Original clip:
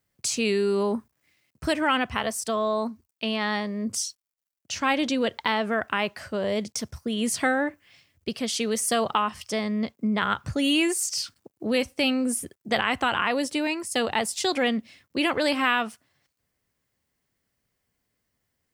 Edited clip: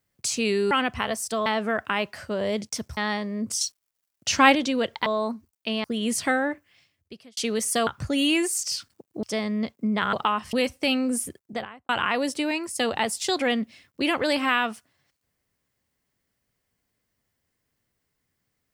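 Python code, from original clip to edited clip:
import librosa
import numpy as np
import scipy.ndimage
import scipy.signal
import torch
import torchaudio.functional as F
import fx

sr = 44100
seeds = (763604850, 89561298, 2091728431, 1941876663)

y = fx.studio_fade_out(x, sr, start_s=12.45, length_s=0.6)
y = fx.edit(y, sr, fx.cut(start_s=0.71, length_s=1.16),
    fx.swap(start_s=2.62, length_s=0.78, other_s=5.49, other_length_s=1.51),
    fx.clip_gain(start_s=4.04, length_s=0.94, db=7.5),
    fx.fade_out_span(start_s=7.53, length_s=1.0),
    fx.swap(start_s=9.03, length_s=0.4, other_s=10.33, other_length_s=1.36), tone=tone)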